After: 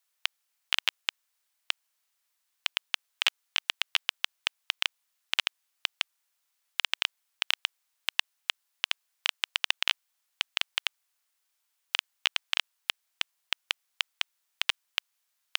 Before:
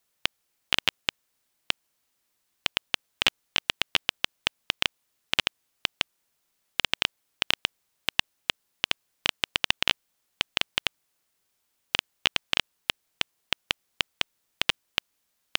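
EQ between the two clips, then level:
high-pass filter 880 Hz 12 dB per octave
−2.5 dB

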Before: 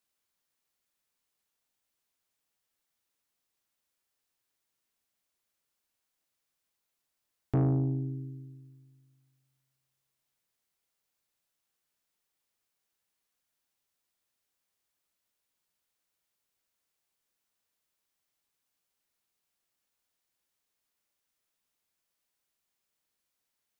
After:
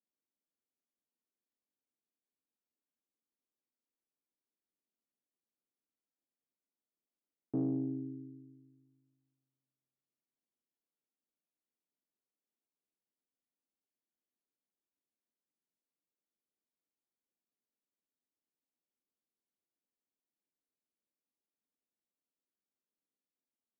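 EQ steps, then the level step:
four-pole ladder band-pass 300 Hz, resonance 40%
+5.5 dB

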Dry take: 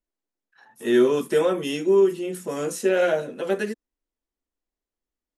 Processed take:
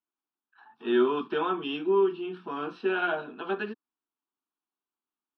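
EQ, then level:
band-pass filter 360–3,200 Hz
high-frequency loss of the air 220 metres
phaser with its sweep stopped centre 2,000 Hz, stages 6
+4.5 dB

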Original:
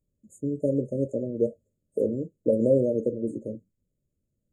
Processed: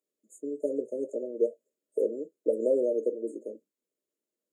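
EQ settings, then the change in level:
high-pass filter 350 Hz 24 dB per octave
notch filter 550 Hz, Q 12
0.0 dB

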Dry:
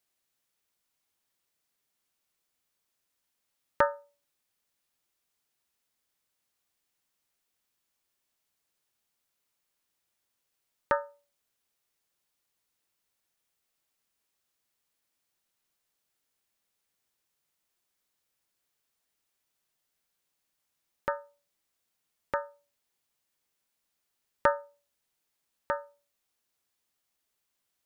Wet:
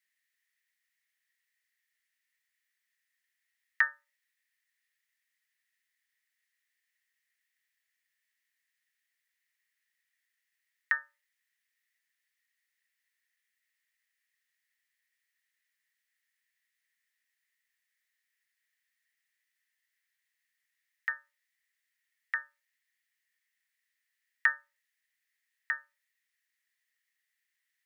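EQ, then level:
four-pole ladder high-pass 1,800 Hz, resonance 85%
+7.5 dB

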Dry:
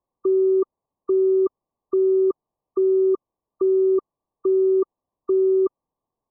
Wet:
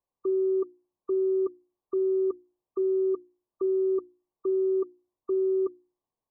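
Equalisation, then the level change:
mains-hum notches 60/120/180/240/300/360 Hz
−7.0 dB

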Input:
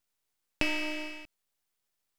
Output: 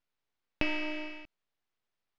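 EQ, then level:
high-frequency loss of the air 190 metres
0.0 dB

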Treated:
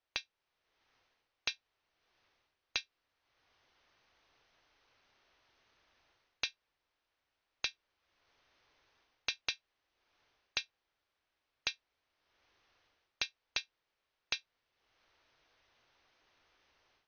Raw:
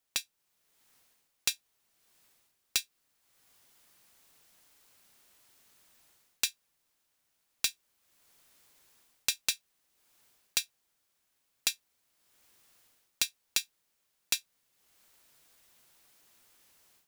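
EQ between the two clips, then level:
linear-phase brick-wall low-pass 6,500 Hz
high-frequency loss of the air 200 metres
parametric band 190 Hz −10 dB 1 octave
+1.0 dB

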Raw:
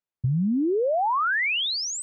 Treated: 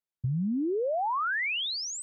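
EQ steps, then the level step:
no EQ move
−5.5 dB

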